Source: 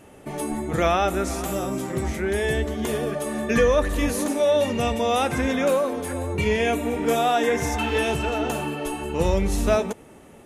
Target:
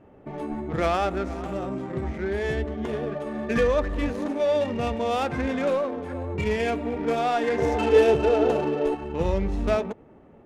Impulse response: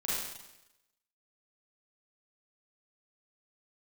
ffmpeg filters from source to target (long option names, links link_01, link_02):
-filter_complex "[0:a]asettb=1/sr,asplit=3[link_01][link_02][link_03];[link_01]atrim=end=7.584[link_04];[link_02]atrim=start=7.58:end=8.95,asetpts=PTS-STARTPTS,afade=type=in:duration=0.004:curve=qsin,afade=type=out:start_time=1.366:duration=0.004:curve=qsin,equalizer=frequency=460:width=1.4:gain=12.5[link_05];[link_03]atrim=start=8.946[link_06];[link_04][link_05]acrossfade=duration=0.004:curve1=hsin:curve2=qsin[link_07];[link_07][link_06]acrossfade=duration=0.004:curve1=qsin:curve2=hsin,adynamicsmooth=sensitivity=2:basefreq=1500,volume=-3dB"